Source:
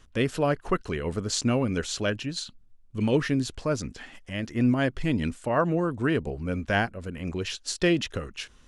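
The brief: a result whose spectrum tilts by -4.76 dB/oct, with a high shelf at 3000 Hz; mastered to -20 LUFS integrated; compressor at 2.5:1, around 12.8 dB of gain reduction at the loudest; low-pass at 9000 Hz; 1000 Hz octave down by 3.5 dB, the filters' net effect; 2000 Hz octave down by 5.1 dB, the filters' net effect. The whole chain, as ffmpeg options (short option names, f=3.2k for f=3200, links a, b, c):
-af "lowpass=9k,equalizer=f=1k:t=o:g=-3.5,equalizer=f=2k:t=o:g=-7,highshelf=f=3k:g=4,acompressor=threshold=-39dB:ratio=2.5,volume=18.5dB"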